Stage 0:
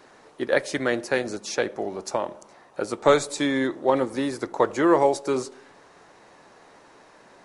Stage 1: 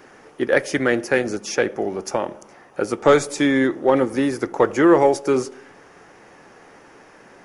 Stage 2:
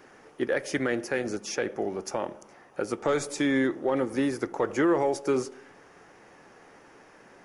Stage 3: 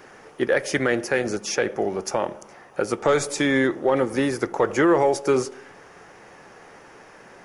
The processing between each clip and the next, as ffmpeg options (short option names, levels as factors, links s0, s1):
-af "equalizer=f=630:t=o:w=0.33:g=-5,equalizer=f=1000:t=o:w=0.33:g=-6,equalizer=f=4000:t=o:w=0.33:g=-12,equalizer=f=8000:t=o:w=0.33:g=-8,acontrast=69"
-af "alimiter=limit=0.299:level=0:latency=1:release=90,volume=0.501"
-af "equalizer=f=280:w=2.4:g=-4.5,volume=2.24"